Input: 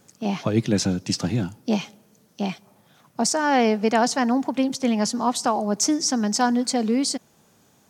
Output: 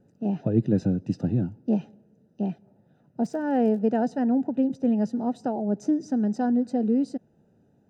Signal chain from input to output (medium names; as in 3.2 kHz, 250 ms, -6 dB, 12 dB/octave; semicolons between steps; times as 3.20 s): boxcar filter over 40 samples; 3.23–3.91 s: crackle 57 per s -> 22 per s -41 dBFS